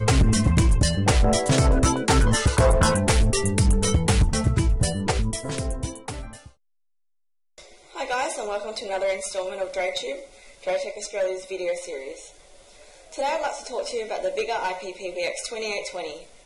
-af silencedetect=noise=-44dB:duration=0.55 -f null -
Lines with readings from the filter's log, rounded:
silence_start: 6.49
silence_end: 7.58 | silence_duration: 1.09